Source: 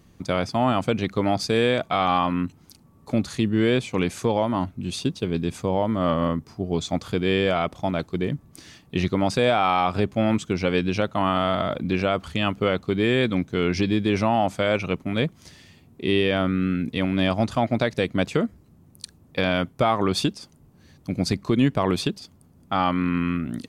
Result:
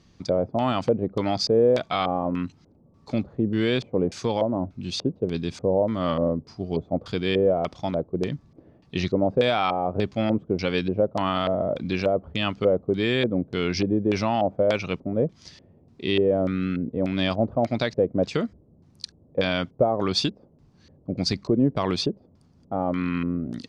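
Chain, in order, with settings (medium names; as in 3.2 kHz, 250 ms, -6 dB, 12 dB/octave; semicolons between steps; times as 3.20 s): LFO low-pass square 1.7 Hz 550–5100 Hz; trim -3 dB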